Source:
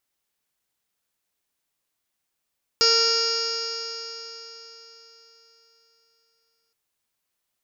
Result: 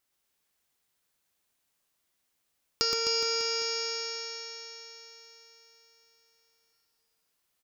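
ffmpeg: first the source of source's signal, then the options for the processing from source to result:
-f lavfi -i "aevalsrc='0.0708*pow(10,-3*t/4)*sin(2*PI*456.36*t)+0.0133*pow(10,-3*t/4)*sin(2*PI*914.91*t)+0.0562*pow(10,-3*t/4)*sin(2*PI*1377.81*t)+0.0168*pow(10,-3*t/4)*sin(2*PI*1847.2*t)+0.02*pow(10,-3*t/4)*sin(2*PI*2325.15*t)+0.0266*pow(10,-3*t/4)*sin(2*PI*2813.69*t)+0.0106*pow(10,-3*t/4)*sin(2*PI*3314.77*t)+0.0133*pow(10,-3*t/4)*sin(2*PI*3830.23*t)+0.0562*pow(10,-3*t/4)*sin(2*PI*4361.84*t)+0.126*pow(10,-3*t/4)*sin(2*PI*4911.27*t)+0.0891*pow(10,-3*t/4)*sin(2*PI*5480.08*t)+0.0178*pow(10,-3*t/4)*sin(2*PI*6069.73*t)+0.0335*pow(10,-3*t/4)*sin(2*PI*6681.57*t)':duration=3.92:sample_rate=44100"
-filter_complex "[0:a]acompressor=threshold=-26dB:ratio=6,asplit=2[link_01][link_02];[link_02]aecho=0:1:120|258|416.7|599.2|809.1:0.631|0.398|0.251|0.158|0.1[link_03];[link_01][link_03]amix=inputs=2:normalize=0"

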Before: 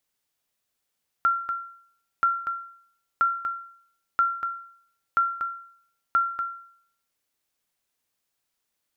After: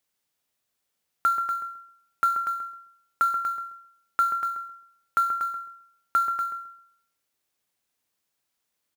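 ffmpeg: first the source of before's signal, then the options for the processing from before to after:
-f lavfi -i "aevalsrc='0.188*(sin(2*PI*1370*mod(t,0.98))*exp(-6.91*mod(t,0.98)/0.61)+0.398*sin(2*PI*1370*max(mod(t,0.98)-0.24,0))*exp(-6.91*max(mod(t,0.98)-0.24,0)/0.61))':duration=5.88:sample_rate=44100"
-filter_complex "[0:a]highpass=frequency=57:poles=1,acrusher=bits=5:mode=log:mix=0:aa=0.000001,asplit=2[link_01][link_02];[link_02]adelay=132,lowpass=frequency=910:poles=1,volume=-6dB,asplit=2[link_03][link_04];[link_04]adelay=132,lowpass=frequency=910:poles=1,volume=0.29,asplit=2[link_05][link_06];[link_06]adelay=132,lowpass=frequency=910:poles=1,volume=0.29,asplit=2[link_07][link_08];[link_08]adelay=132,lowpass=frequency=910:poles=1,volume=0.29[link_09];[link_01][link_03][link_05][link_07][link_09]amix=inputs=5:normalize=0"

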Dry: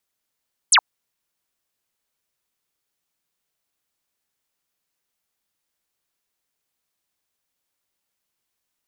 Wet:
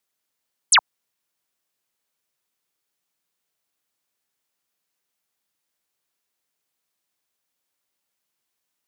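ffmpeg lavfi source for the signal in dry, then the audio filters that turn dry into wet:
-f lavfi -i "aevalsrc='0.316*clip(t/0.002,0,1)*clip((0.07-t)/0.002,0,1)*sin(2*PI*11000*0.07/log(750/11000)*(exp(log(750/11000)*t/0.07)-1))':duration=0.07:sample_rate=44100"
-af "highpass=frequency=120:poles=1"

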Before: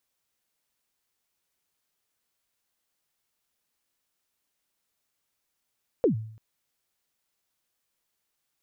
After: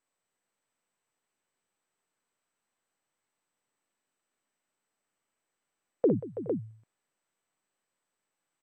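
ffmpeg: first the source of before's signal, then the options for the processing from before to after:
-f lavfi -i "aevalsrc='0.168*pow(10,-3*t/0.61)*sin(2*PI*(540*0.111/log(110/540)*(exp(log(110/540)*min(t,0.111)/0.111)-1)+110*max(t-0.111,0)))':duration=0.34:sample_rate=44100"
-af "highpass=140,lowpass=2000,aecho=1:1:49|59|185|329|419|455:0.141|0.473|0.141|0.224|0.1|0.473" -ar 32000 -c:a mp2 -b:a 96k

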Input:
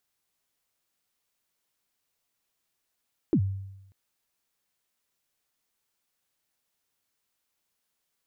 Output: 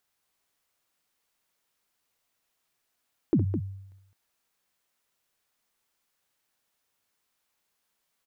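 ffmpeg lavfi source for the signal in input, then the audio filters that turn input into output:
-f lavfi -i "aevalsrc='0.141*pow(10,-3*t/0.92)*sin(2*PI*(380*0.073/log(97/380)*(exp(log(97/380)*min(t,0.073)/0.073)-1)+97*max(t-0.073,0)))':duration=0.59:sample_rate=44100"
-af "equalizer=frequency=1100:width_type=o:width=2.8:gain=3.5,aecho=1:1:64.14|209.9:0.282|0.398"

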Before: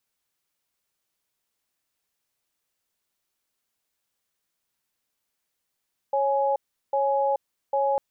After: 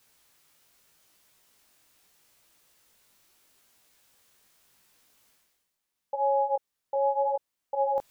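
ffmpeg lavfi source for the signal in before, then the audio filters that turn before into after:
-f lavfi -i "aevalsrc='0.0708*(sin(2*PI*551*t)+sin(2*PI*836*t))*clip(min(mod(t,0.8),0.43-mod(t,0.8))/0.005,0,1)':duration=1.85:sample_rate=44100"
-af "areverse,acompressor=mode=upward:threshold=-45dB:ratio=2.5,areverse,flanger=delay=16.5:depth=5.5:speed=0.79"

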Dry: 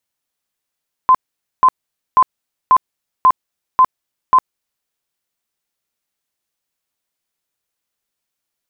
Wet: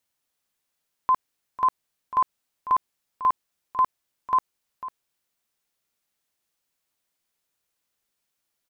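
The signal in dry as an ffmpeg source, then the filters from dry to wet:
-f lavfi -i "aevalsrc='0.531*sin(2*PI*1030*mod(t,0.54))*lt(mod(t,0.54),58/1030)':duration=3.78:sample_rate=44100"
-af "alimiter=limit=-15dB:level=0:latency=1:release=27,aecho=1:1:498:0.2"

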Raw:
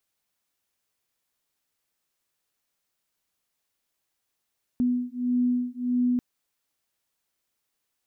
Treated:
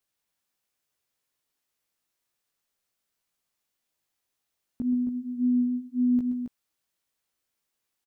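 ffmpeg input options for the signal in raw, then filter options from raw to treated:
-f lavfi -i "aevalsrc='0.0531*(sin(2*PI*246*t)+sin(2*PI*247.6*t))':duration=1.39:sample_rate=44100"
-filter_complex "[0:a]flanger=delay=15.5:depth=3.6:speed=1.8,asplit=2[link_01][link_02];[link_02]aecho=0:1:125.4|271.1:0.316|0.447[link_03];[link_01][link_03]amix=inputs=2:normalize=0"

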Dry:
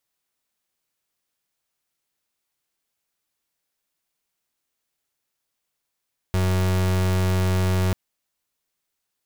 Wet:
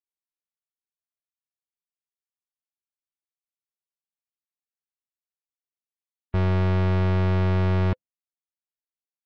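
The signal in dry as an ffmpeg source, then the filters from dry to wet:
-f lavfi -i "aevalsrc='0.0944*(2*lt(mod(92.6*t,1),0.36)-1)':duration=1.59:sample_rate=44100"
-af "afftdn=noise_reduction=26:noise_floor=-36,highshelf=frequency=8300:gain=-8,bandreject=frequency=510:width=12"

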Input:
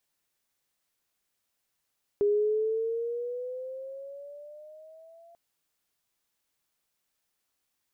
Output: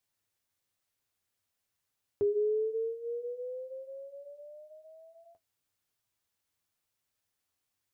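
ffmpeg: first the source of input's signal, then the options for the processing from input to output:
-f lavfi -i "aevalsrc='pow(10,(-20.5-31*t/3.14)/20)*sin(2*PI*407*3.14/(9*log(2)/12)*(exp(9*log(2)/12*t/3.14)-1))':duration=3.14:sample_rate=44100"
-af "equalizer=frequency=98:width_type=o:width=0.49:gain=11,flanger=delay=7.6:depth=4.3:regen=-43:speed=1:shape=sinusoidal"

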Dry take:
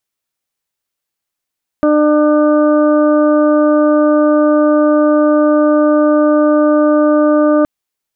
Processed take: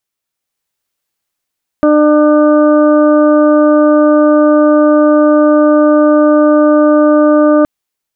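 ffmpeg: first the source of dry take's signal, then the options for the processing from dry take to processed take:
-f lavfi -i "aevalsrc='0.316*sin(2*PI*300*t)+0.282*sin(2*PI*600*t)+0.0335*sin(2*PI*900*t)+0.106*sin(2*PI*1200*t)+0.0422*sin(2*PI*1500*t)':duration=5.82:sample_rate=44100"
-af "dynaudnorm=framelen=220:gausssize=5:maxgain=5dB"

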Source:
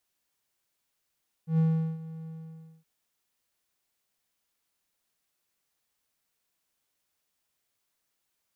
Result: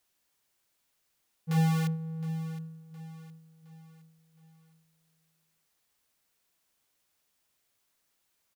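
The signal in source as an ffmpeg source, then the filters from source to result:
-f lavfi -i "aevalsrc='0.133*(1-4*abs(mod(161*t+0.25,1)-0.5))':duration=1.37:sample_rate=44100,afade=type=in:duration=0.113,afade=type=out:start_time=0.113:duration=0.395:silence=0.126,afade=type=out:start_time=0.81:duration=0.56"
-filter_complex "[0:a]asplit=2[link_01][link_02];[link_02]aeval=exprs='(mod(21.1*val(0)+1,2)-1)/21.1':channel_layout=same,volume=-6dB[link_03];[link_01][link_03]amix=inputs=2:normalize=0,aecho=1:1:715|1430|2145|2860:0.178|0.0747|0.0314|0.0132"

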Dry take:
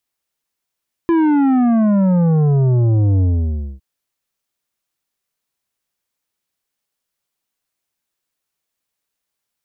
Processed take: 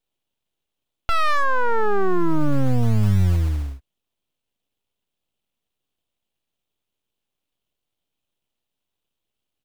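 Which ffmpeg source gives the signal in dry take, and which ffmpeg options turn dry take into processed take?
-f lavfi -i "aevalsrc='0.251*clip((2.71-t)/0.59,0,1)*tanh(2.99*sin(2*PI*340*2.71/log(65/340)*(exp(log(65/340)*t/2.71)-1)))/tanh(2.99)':duration=2.71:sample_rate=44100"
-filter_complex "[0:a]firequalizer=gain_entry='entry(140,0);entry(480,-13);entry(900,3);entry(1500,13);entry(3200,-8)':delay=0.05:min_phase=1,acrossover=split=110[link_01][link_02];[link_01]acrusher=bits=5:mode=log:mix=0:aa=0.000001[link_03];[link_02]aeval=exprs='abs(val(0))':channel_layout=same[link_04];[link_03][link_04]amix=inputs=2:normalize=0"

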